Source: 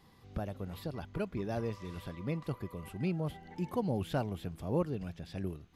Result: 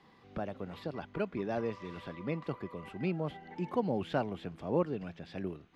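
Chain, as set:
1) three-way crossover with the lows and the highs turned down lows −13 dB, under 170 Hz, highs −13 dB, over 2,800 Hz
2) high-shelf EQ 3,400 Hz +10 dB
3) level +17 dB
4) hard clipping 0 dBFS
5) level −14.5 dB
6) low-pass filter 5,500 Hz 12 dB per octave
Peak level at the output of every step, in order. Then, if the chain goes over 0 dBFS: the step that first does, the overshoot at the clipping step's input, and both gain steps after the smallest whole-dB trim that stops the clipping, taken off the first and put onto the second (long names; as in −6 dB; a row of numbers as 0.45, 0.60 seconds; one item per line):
−20.0, −19.5, −2.5, −2.5, −17.0, −17.0 dBFS
no step passes full scale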